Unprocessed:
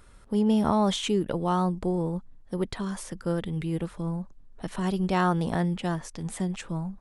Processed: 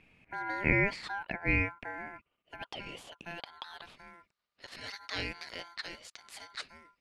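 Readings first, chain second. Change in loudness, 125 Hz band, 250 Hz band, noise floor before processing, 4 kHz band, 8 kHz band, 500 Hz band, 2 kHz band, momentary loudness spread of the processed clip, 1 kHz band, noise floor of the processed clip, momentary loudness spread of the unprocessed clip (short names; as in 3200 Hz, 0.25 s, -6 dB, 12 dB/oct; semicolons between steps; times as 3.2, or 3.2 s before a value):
-7.0 dB, -11.5 dB, -15.5 dB, -52 dBFS, -5.5 dB, -13.5 dB, -12.0 dB, +6.0 dB, 20 LU, -11.0 dB, under -85 dBFS, 11 LU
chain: band-pass sweep 1100 Hz -> 3200 Hz, 1.07–4.83; ring modulator 1200 Hz; gain +7 dB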